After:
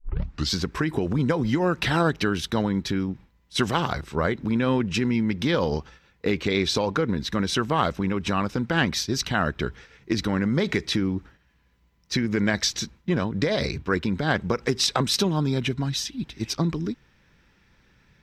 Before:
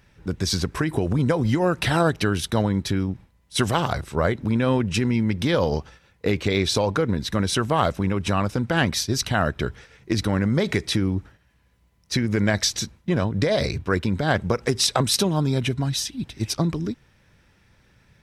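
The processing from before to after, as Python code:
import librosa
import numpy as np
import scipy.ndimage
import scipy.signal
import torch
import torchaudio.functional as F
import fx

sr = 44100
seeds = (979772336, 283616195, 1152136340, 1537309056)

y = fx.tape_start_head(x, sr, length_s=0.53)
y = fx.graphic_eq_15(y, sr, hz=(100, 630, 10000), db=(-8, -5, -12))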